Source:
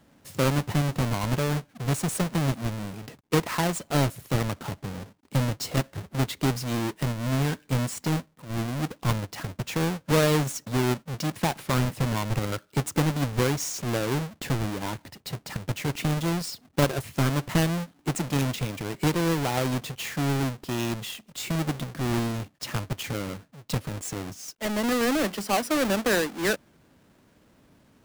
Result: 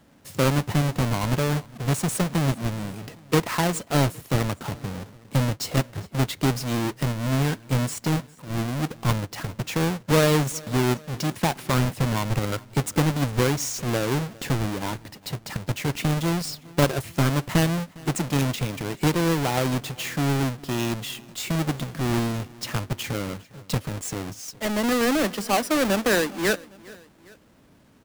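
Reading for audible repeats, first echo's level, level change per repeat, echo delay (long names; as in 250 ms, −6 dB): 2, −23.0 dB, −5.0 dB, 406 ms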